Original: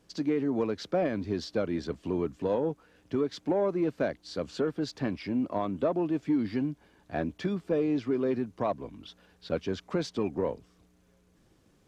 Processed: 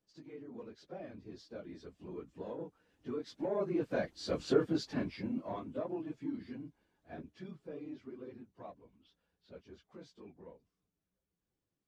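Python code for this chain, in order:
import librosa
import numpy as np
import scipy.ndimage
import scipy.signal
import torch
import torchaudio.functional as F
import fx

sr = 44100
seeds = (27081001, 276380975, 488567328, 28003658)

y = fx.phase_scramble(x, sr, seeds[0], window_ms=50)
y = fx.doppler_pass(y, sr, speed_mps=6, closest_m=2.4, pass_at_s=4.45)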